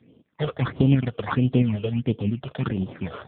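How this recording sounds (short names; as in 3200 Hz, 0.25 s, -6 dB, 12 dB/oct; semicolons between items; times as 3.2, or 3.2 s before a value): aliases and images of a low sample rate 2800 Hz, jitter 20%; phasing stages 8, 1.5 Hz, lowest notch 250–1900 Hz; tremolo saw up 7.4 Hz, depth 35%; AMR-NB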